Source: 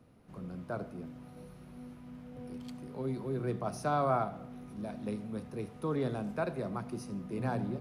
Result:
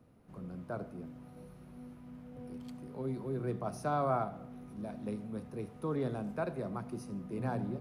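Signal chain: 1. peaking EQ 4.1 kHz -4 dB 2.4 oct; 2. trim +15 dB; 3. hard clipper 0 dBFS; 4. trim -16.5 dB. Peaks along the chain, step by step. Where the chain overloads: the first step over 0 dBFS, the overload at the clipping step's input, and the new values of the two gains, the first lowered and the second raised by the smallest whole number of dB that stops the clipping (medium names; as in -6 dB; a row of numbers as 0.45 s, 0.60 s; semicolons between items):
-18.0 dBFS, -3.0 dBFS, -3.0 dBFS, -19.5 dBFS; nothing clips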